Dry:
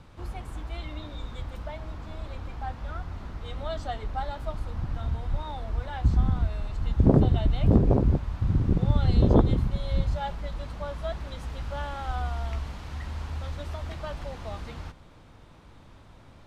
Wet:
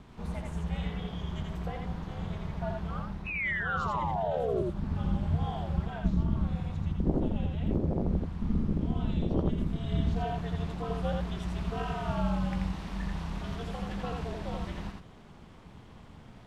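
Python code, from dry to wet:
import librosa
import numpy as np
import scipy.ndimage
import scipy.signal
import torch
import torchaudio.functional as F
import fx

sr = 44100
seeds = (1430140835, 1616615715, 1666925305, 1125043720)

p1 = fx.spec_paint(x, sr, seeds[0], shape='fall', start_s=3.26, length_s=1.36, low_hz=460.0, high_hz=2800.0, level_db=-21.0)
p2 = p1 * np.sin(2.0 * np.pi * 120.0 * np.arange(len(p1)) / sr)
p3 = fx.formant_shift(p2, sr, semitones=-2)
p4 = p3 + fx.echo_single(p3, sr, ms=84, db=-3.0, dry=0)
p5 = fx.rider(p4, sr, range_db=5, speed_s=0.5)
y = p5 * 10.0 ** (-3.5 / 20.0)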